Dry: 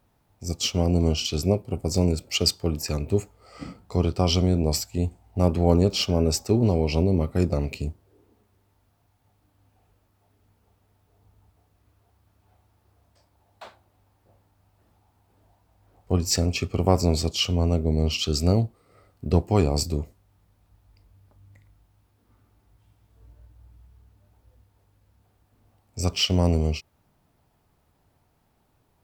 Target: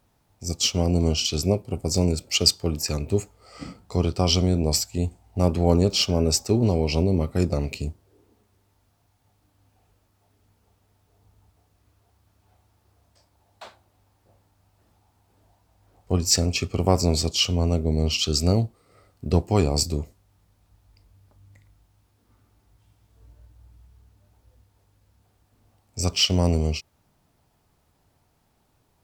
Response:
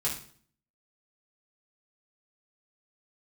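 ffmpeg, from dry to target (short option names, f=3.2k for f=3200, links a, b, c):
-af "equalizer=f=6.5k:w=0.62:g=5"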